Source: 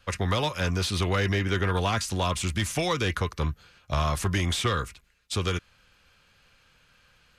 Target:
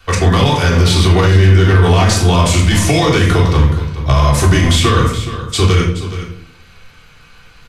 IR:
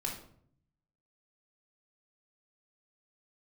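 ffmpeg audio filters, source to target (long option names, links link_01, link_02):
-filter_complex "[0:a]acrossover=split=390|630|3500[link_01][link_02][link_03][link_04];[link_03]asoftclip=type=tanh:threshold=-27.5dB[link_05];[link_01][link_02][link_05][link_04]amix=inputs=4:normalize=0,aecho=1:1:406:0.2[link_06];[1:a]atrim=start_sample=2205[link_07];[link_06][link_07]afir=irnorm=-1:irlink=0,asetrate=42336,aresample=44100,alimiter=level_in=15dB:limit=-1dB:release=50:level=0:latency=1,volume=-1dB"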